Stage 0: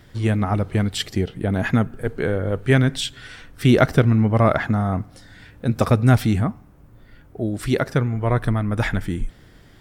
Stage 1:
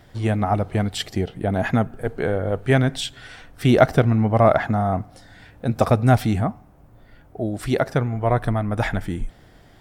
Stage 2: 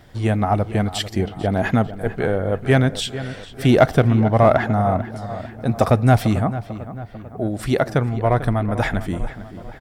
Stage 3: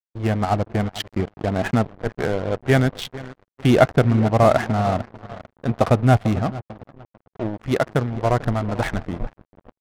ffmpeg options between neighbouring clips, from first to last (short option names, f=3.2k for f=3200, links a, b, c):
-af "equalizer=f=720:w=2.1:g=8.5,volume=-2dB"
-filter_complex "[0:a]asplit=2[a][b];[b]asoftclip=type=hard:threshold=-12dB,volume=-8dB[c];[a][c]amix=inputs=2:normalize=0,asplit=2[d][e];[e]adelay=445,lowpass=f=2.9k:p=1,volume=-13.5dB,asplit=2[f][g];[g]adelay=445,lowpass=f=2.9k:p=1,volume=0.54,asplit=2[h][i];[i]adelay=445,lowpass=f=2.9k:p=1,volume=0.54,asplit=2[j][k];[k]adelay=445,lowpass=f=2.9k:p=1,volume=0.54,asplit=2[l][m];[m]adelay=445,lowpass=f=2.9k:p=1,volume=0.54[n];[d][f][h][j][l][n]amix=inputs=6:normalize=0,volume=-1dB"
-af "aeval=exprs='sgn(val(0))*max(abs(val(0))-0.0335,0)':c=same,adynamicsmooth=sensitivity=5.5:basefreq=680"